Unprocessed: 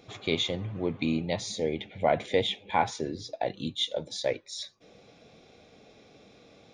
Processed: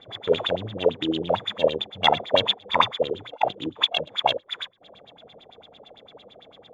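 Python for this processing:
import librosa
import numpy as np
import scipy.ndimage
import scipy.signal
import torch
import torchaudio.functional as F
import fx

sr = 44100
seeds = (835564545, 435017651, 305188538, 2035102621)

y = np.r_[np.sort(x[:len(x) // 16 * 16].reshape(-1, 16), axis=1).ravel(), x[len(x) // 16 * 16:]]
y = fx.formant_shift(y, sr, semitones=4)
y = fx.filter_lfo_lowpass(y, sr, shape='sine', hz=8.9, low_hz=450.0, high_hz=3900.0, q=6.5)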